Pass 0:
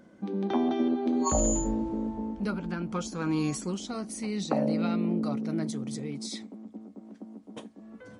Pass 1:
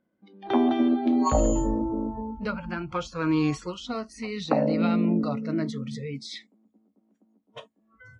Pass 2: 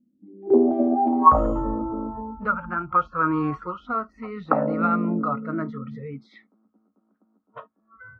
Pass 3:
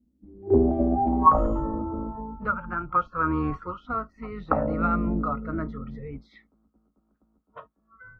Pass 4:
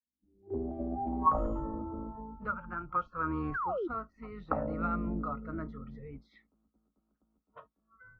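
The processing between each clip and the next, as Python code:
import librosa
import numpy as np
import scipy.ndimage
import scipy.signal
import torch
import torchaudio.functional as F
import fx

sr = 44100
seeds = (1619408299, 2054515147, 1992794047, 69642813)

y1 = scipy.signal.sosfilt(scipy.signal.cheby1(2, 1.0, 3300.0, 'lowpass', fs=sr, output='sos'), x)
y1 = fx.noise_reduce_blind(y1, sr, reduce_db=25)
y1 = y1 * librosa.db_to_amplitude(6.0)
y2 = fx.filter_sweep_lowpass(y1, sr, from_hz=250.0, to_hz=1300.0, start_s=0.12, end_s=1.4, q=7.0)
y2 = y2 * librosa.db_to_amplitude(-1.5)
y3 = fx.octave_divider(y2, sr, octaves=2, level_db=-3.0)
y3 = y3 * librosa.db_to_amplitude(-3.0)
y4 = fx.fade_in_head(y3, sr, length_s=1.45)
y4 = fx.spec_paint(y4, sr, seeds[0], shape='fall', start_s=3.54, length_s=0.34, low_hz=310.0, high_hz=1700.0, level_db=-25.0)
y4 = y4 * librosa.db_to_amplitude(-8.5)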